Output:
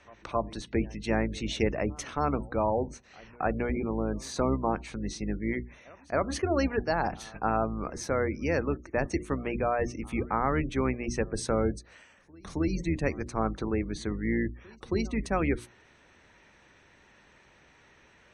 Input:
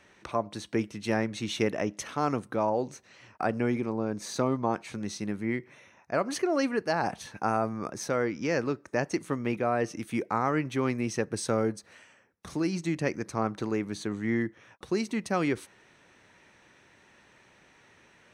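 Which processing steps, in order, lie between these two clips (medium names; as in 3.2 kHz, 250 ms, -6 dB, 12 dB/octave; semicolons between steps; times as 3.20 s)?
octave divider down 2 oct, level -2 dB; treble shelf 8.4 kHz -4 dB; hum notches 60/120/180/240/300/360 Hz; reverse echo 270 ms -24 dB; spectral gate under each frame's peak -30 dB strong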